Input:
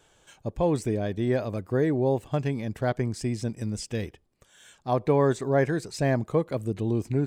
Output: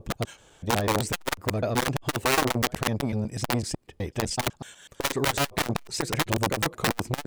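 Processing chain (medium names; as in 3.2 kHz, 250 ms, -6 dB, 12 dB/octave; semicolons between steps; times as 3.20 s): slices played last to first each 125 ms, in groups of 5; integer overflow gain 20.5 dB; transformer saturation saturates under 340 Hz; trim +6 dB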